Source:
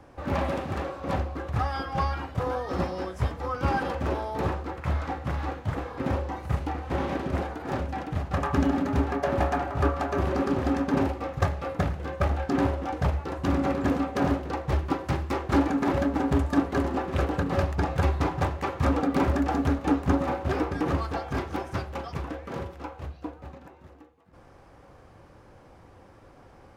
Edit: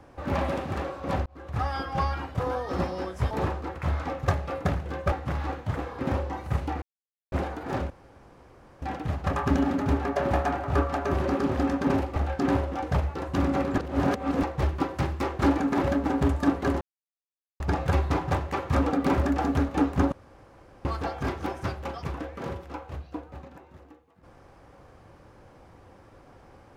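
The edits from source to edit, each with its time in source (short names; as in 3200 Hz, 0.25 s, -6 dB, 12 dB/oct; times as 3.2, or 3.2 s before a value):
1.26–1.67 fade in
3.31–4.33 cut
6.81–7.31 mute
7.89 insert room tone 0.92 s
11.23–12.26 move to 5.11
13.88–14.53 reverse
16.91–17.7 mute
20.22–20.95 room tone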